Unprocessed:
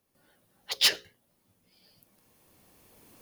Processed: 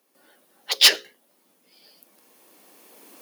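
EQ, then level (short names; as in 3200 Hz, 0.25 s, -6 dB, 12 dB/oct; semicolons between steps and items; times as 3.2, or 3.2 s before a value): HPF 250 Hz 24 dB/oct; +8.5 dB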